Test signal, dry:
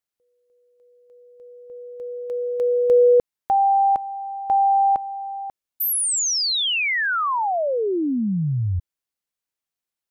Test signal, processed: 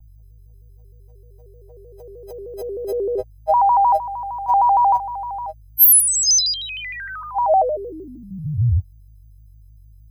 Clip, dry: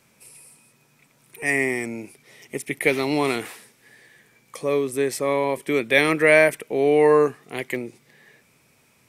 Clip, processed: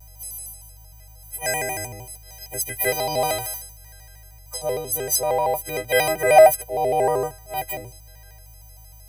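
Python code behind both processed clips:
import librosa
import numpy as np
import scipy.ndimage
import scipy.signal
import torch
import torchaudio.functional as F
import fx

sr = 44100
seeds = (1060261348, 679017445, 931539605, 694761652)

y = fx.freq_snap(x, sr, grid_st=4)
y = fx.add_hum(y, sr, base_hz=50, snr_db=31)
y = fx.curve_eq(y, sr, hz=(110.0, 230.0, 430.0, 760.0, 1100.0, 3400.0, 5500.0, 7900.0, 12000.0), db=(0, -25, -15, 5, -18, -19, -4, -15, -3))
y = fx.vibrato_shape(y, sr, shape='square', rate_hz=6.5, depth_cents=160.0)
y = y * librosa.db_to_amplitude(6.5)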